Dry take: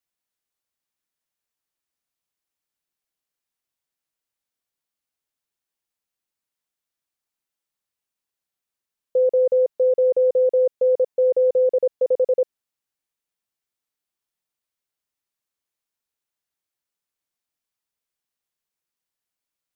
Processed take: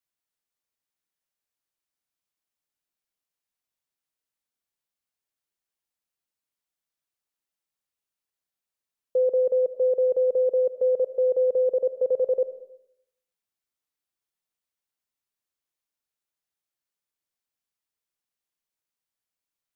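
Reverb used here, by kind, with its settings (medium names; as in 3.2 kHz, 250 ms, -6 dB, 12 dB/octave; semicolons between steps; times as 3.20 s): algorithmic reverb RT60 0.77 s, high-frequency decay 0.95×, pre-delay 40 ms, DRR 13 dB; trim -3.5 dB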